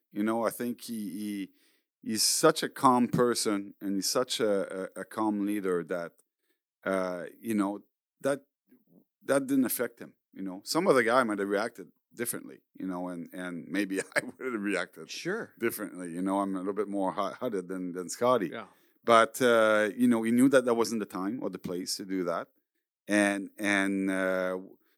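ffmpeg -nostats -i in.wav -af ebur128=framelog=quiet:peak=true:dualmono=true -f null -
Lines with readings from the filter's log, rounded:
Integrated loudness:
  I:         -26.3 LUFS
  Threshold: -36.8 LUFS
Loudness range:
  LRA:         8.2 LU
  Threshold: -46.8 LUFS
  LRA low:   -31.1 LUFS
  LRA high:  -22.9 LUFS
True peak:
  Peak:       -6.6 dBFS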